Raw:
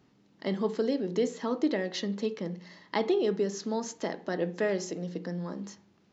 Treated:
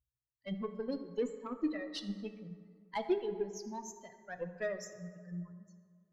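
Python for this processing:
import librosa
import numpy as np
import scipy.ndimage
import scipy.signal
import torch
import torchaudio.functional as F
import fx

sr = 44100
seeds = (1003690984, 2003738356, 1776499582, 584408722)

y = fx.bin_expand(x, sr, power=3.0)
y = fx.cheby_harmonics(y, sr, harmonics=(8,), levels_db=(-30,), full_scale_db=-19.5)
y = fx.rev_fdn(y, sr, rt60_s=2.0, lf_ratio=0.95, hf_ratio=0.5, size_ms=48.0, drr_db=7.5)
y = y * 10.0 ** (-3.0 / 20.0)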